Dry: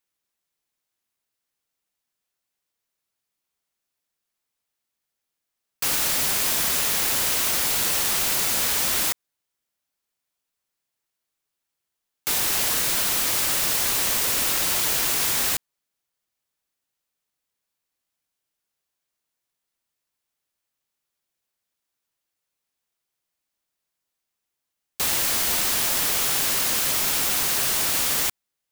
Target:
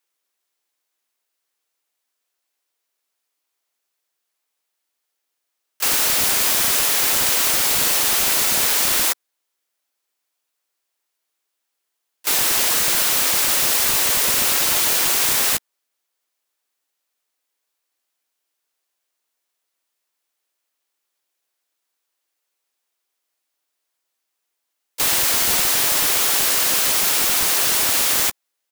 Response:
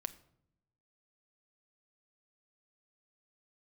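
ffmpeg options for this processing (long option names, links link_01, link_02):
-filter_complex "[0:a]asplit=4[link_01][link_02][link_03][link_04];[link_02]asetrate=33038,aresample=44100,atempo=1.33484,volume=-14dB[link_05];[link_03]asetrate=52444,aresample=44100,atempo=0.840896,volume=-15dB[link_06];[link_04]asetrate=55563,aresample=44100,atempo=0.793701,volume=-17dB[link_07];[link_01][link_05][link_06][link_07]amix=inputs=4:normalize=0,acrossover=split=260|1200|5100[link_08][link_09][link_10][link_11];[link_08]acrusher=bits=5:mix=0:aa=0.5[link_12];[link_12][link_09][link_10][link_11]amix=inputs=4:normalize=0,volume=4.5dB"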